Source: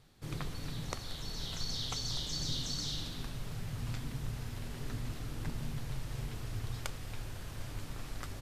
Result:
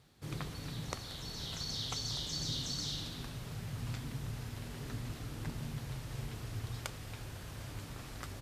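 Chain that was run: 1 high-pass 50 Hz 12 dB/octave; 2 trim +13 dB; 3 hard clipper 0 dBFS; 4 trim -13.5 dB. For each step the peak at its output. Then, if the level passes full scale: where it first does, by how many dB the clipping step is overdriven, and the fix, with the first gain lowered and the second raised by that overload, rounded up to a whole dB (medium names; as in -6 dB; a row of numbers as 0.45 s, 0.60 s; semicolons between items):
-18.5 dBFS, -5.5 dBFS, -5.5 dBFS, -19.0 dBFS; nothing clips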